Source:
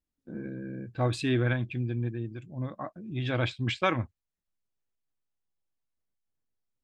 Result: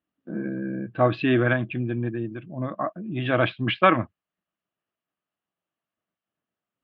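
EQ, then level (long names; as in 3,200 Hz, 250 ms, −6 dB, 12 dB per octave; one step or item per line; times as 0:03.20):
high-frequency loss of the air 200 metres
loudspeaker in its box 130–3,900 Hz, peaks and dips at 190 Hz +6 dB, 320 Hz +5 dB, 650 Hz +9 dB, 1,200 Hz +9 dB, 1,700 Hz +5 dB, 2,900 Hz +8 dB
+4.5 dB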